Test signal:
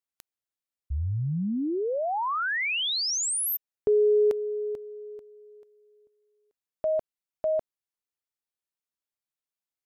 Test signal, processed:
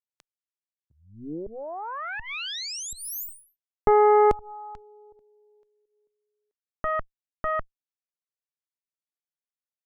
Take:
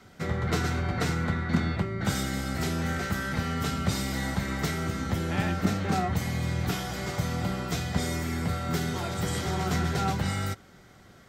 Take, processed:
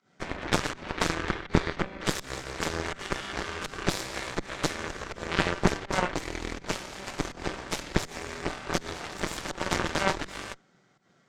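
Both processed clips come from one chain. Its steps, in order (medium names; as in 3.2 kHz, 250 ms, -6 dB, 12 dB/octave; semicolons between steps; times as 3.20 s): volume shaper 82 bpm, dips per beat 1, -15 dB, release 160 ms; elliptic band-pass 140–7300 Hz; Chebyshev shaper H 4 -7 dB, 7 -15 dB, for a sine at -12 dBFS; trim +2.5 dB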